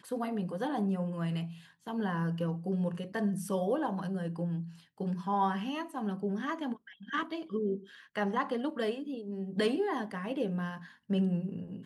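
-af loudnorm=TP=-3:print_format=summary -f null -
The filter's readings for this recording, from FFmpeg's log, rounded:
Input Integrated:    -34.1 LUFS
Input True Peak:     -17.2 dBTP
Input LRA:             1.1 LU
Input Threshold:     -44.2 LUFS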